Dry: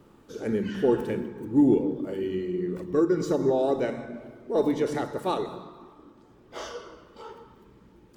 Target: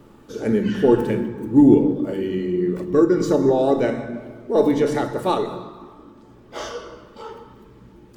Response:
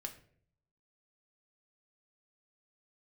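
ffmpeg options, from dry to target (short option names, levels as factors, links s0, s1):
-filter_complex "[0:a]asplit=2[s0][s1];[1:a]atrim=start_sample=2205,lowshelf=f=190:g=4[s2];[s1][s2]afir=irnorm=-1:irlink=0,volume=1.58[s3];[s0][s3]amix=inputs=2:normalize=0"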